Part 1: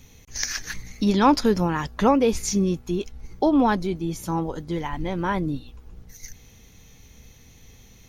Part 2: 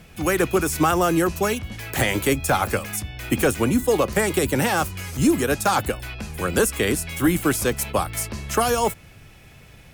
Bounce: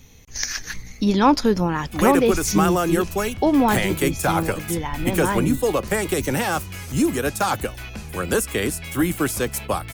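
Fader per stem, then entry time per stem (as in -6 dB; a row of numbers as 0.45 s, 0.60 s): +1.5 dB, -1.5 dB; 0.00 s, 1.75 s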